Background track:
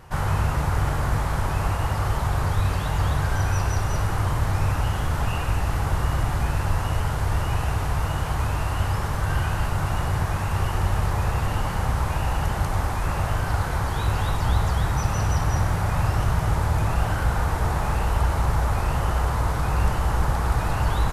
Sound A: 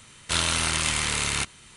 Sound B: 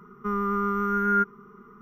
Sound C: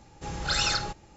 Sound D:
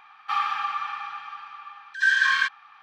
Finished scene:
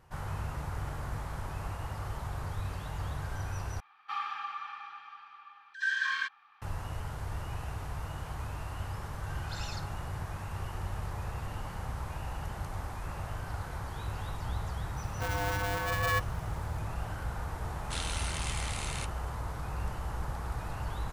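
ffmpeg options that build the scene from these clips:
ffmpeg -i bed.wav -i cue0.wav -i cue1.wav -i cue2.wav -i cue3.wav -filter_complex "[0:a]volume=-14dB[link_01];[4:a]equalizer=frequency=360:width=3.9:gain=9[link_02];[2:a]aeval=exprs='val(0)*sgn(sin(2*PI*300*n/s))':channel_layout=same[link_03];[link_01]asplit=2[link_04][link_05];[link_04]atrim=end=3.804[link_06];[link_02]atrim=end=2.82,asetpts=PTS-STARTPTS,volume=-10.5dB[link_07];[link_05]atrim=start=6.616[link_08];[3:a]atrim=end=1.16,asetpts=PTS-STARTPTS,volume=-17.5dB,afade=type=in:duration=0.004:curve=hsin,afade=type=out:start_time=1.156:duration=0.004:curve=hsin,adelay=9020[link_09];[link_03]atrim=end=1.81,asetpts=PTS-STARTPTS,volume=-7.5dB,afade=type=in:duration=0.004:curve=hsin,afade=type=out:start_time=1.806:duration=0.004:curve=hsin,adelay=14960[link_10];[1:a]atrim=end=1.76,asetpts=PTS-STARTPTS,volume=-13.5dB,afade=type=in:duration=0.004:curve=hsin,afade=type=out:start_time=1.756:duration=0.004:curve=hsin,adelay=17610[link_11];[link_06][link_07]acrossfade=duration=0.004:curve1=hsin:curve2=hsin[link_12];[link_12][link_08]acrossfade=duration=0.004:curve1=hsin:curve2=hsin[link_13];[link_13][link_09][link_10][link_11]amix=inputs=4:normalize=0" out.wav

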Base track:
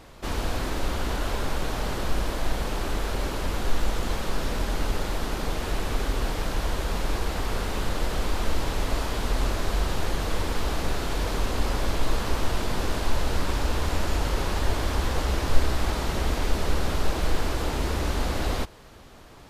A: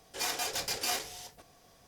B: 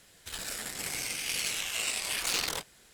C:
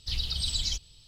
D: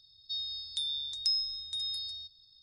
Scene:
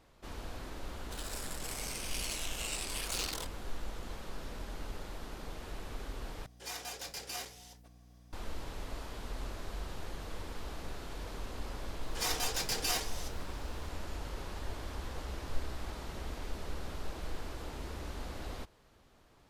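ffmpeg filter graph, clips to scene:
ffmpeg -i bed.wav -i cue0.wav -i cue1.wav -filter_complex "[1:a]asplit=2[link_01][link_02];[0:a]volume=-15.5dB[link_03];[2:a]equalizer=frequency=2000:width=1.7:gain=-4.5[link_04];[link_01]aeval=exprs='val(0)+0.00398*(sin(2*PI*60*n/s)+sin(2*PI*2*60*n/s)/2+sin(2*PI*3*60*n/s)/3+sin(2*PI*4*60*n/s)/4+sin(2*PI*5*60*n/s)/5)':channel_layout=same[link_05];[link_02]aecho=1:1:6.4:0.45[link_06];[link_03]asplit=2[link_07][link_08];[link_07]atrim=end=6.464[link_09];[link_05]atrim=end=1.87,asetpts=PTS-STARTPTS,volume=-9dB[link_10];[link_08]atrim=start=8.326[link_11];[link_04]atrim=end=2.93,asetpts=PTS-STARTPTS,volume=-6dB,afade=type=in:duration=0.004:curve=hsin,afade=type=out:start_time=2.926:duration=0.004:curve=hsin,adelay=850[link_12];[link_06]atrim=end=1.87,asetpts=PTS-STARTPTS,volume=-1.5dB,afade=type=in:duration=0.004:curve=hsin,afade=type=out:start_time=1.866:duration=0.004:curve=hsin,adelay=12010[link_13];[link_09][link_10]acrossfade=duration=0.004:curve1=hsin:curve2=hsin[link_14];[link_14][link_11]acrossfade=duration=0.004:curve1=hsin:curve2=hsin[link_15];[link_15][link_12][link_13]amix=inputs=3:normalize=0" out.wav

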